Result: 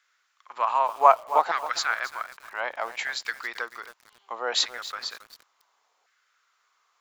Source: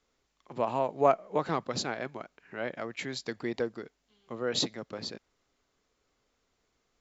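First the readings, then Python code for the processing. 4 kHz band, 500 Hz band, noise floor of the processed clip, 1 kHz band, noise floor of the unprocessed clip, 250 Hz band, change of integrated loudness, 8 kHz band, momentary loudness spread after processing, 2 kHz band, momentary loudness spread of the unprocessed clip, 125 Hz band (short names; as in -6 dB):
+6.5 dB, +0.5 dB, -71 dBFS, +10.5 dB, -78 dBFS, -16.0 dB, +6.0 dB, n/a, 18 LU, +10.5 dB, 19 LU, under -20 dB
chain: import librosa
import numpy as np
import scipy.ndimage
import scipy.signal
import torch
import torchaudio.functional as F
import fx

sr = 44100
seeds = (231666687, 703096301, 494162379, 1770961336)

y = fx.filter_lfo_highpass(x, sr, shape='saw_down', hz=0.66, low_hz=780.0, high_hz=1600.0, q=3.2)
y = fx.echo_crushed(y, sr, ms=272, feedback_pct=35, bits=7, wet_db=-13.0)
y = F.gain(torch.from_numpy(y), 5.0).numpy()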